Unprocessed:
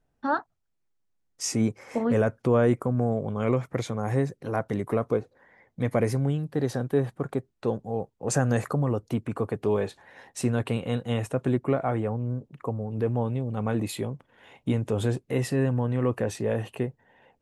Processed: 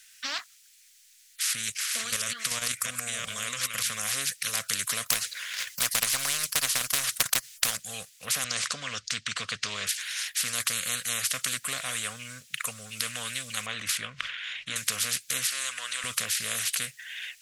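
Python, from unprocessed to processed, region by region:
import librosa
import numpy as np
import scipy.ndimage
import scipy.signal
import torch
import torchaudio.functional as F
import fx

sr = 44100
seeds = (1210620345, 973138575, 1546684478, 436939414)

y = fx.chain(x, sr, fx.reverse_delay(ms=344, wet_db=-8.0),
    fx.level_steps(step_db=10), at=(1.53, 3.9))
y = fx.chain(y, sr, fx.transient(attack_db=11, sustain_db=-12),
    fx.spectral_comp(ratio=4.0), at=(5.06, 7.77))
y = fx.chain(y, sr, fx.lowpass(hz=5500.0, slope=24),
    fx.bass_treble(bass_db=4, treble_db=0), at=(8.44, 9.87))
y = fx.chain(y, sr, fx.lowpass(hz=2300.0, slope=12),
    fx.sustainer(db_per_s=94.0), at=(13.66, 14.76))
y = fx.chain(y, sr, fx.highpass(hz=770.0, slope=12),
    fx.high_shelf(hz=11000.0, db=-11.5), at=(15.47, 16.04))
y = scipy.signal.sosfilt(scipy.signal.cheby2(4, 40, 940.0, 'highpass', fs=sr, output='sos'), y)
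y = fx.peak_eq(y, sr, hz=7900.0, db=9.0, octaves=2.3)
y = fx.spectral_comp(y, sr, ratio=10.0)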